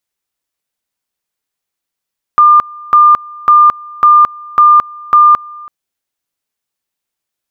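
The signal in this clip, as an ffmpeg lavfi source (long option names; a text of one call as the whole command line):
ffmpeg -f lavfi -i "aevalsrc='pow(10,(-2-24.5*gte(mod(t,0.55),0.22))/20)*sin(2*PI*1200*t)':duration=3.3:sample_rate=44100" out.wav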